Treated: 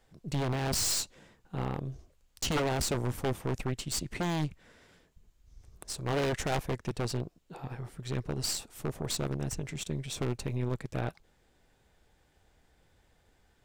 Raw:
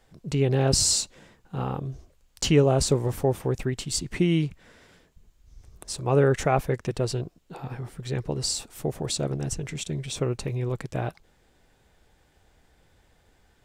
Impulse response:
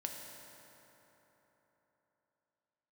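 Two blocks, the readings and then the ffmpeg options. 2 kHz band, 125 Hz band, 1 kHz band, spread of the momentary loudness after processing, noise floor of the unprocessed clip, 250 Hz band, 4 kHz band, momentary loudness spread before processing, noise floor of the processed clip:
-3.0 dB, -7.5 dB, -5.0 dB, 12 LU, -64 dBFS, -7.5 dB, -6.0 dB, 16 LU, -69 dBFS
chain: -af "aeval=exprs='0.398*(cos(1*acos(clip(val(0)/0.398,-1,1)))-cos(1*PI/2))+0.0794*(cos(4*acos(clip(val(0)/0.398,-1,1)))-cos(4*PI/2))+0.1*(cos(6*acos(clip(val(0)/0.398,-1,1)))-cos(6*PI/2))':c=same,aeval=exprs='0.15*(abs(mod(val(0)/0.15+3,4)-2)-1)':c=same,volume=0.562"

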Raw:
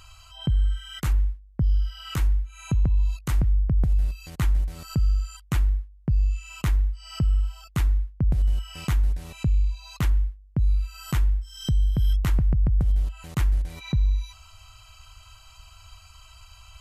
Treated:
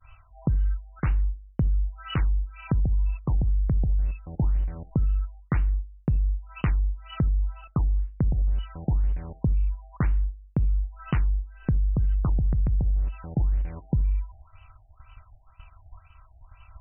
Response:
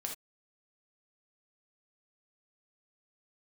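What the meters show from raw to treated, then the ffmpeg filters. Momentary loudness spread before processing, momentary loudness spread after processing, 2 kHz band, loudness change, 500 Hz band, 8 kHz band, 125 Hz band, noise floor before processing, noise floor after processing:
6 LU, 5 LU, -3.0 dB, -1.5 dB, +2.5 dB, no reading, -1.0 dB, -51 dBFS, -55 dBFS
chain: -filter_complex "[0:a]adynamicsmooth=sensitivity=4:basefreq=7100,agate=range=0.0224:threshold=0.00708:ratio=3:detection=peak,acompressor=threshold=0.0631:ratio=4,asplit=2[s0][s1];[1:a]atrim=start_sample=2205[s2];[s1][s2]afir=irnorm=-1:irlink=0,volume=0.188[s3];[s0][s3]amix=inputs=2:normalize=0,afftfilt=real='re*lt(b*sr/1024,830*pow(3100/830,0.5+0.5*sin(2*PI*2*pts/sr)))':imag='im*lt(b*sr/1024,830*pow(3100/830,0.5+0.5*sin(2*PI*2*pts/sr)))':win_size=1024:overlap=0.75,volume=1.33"

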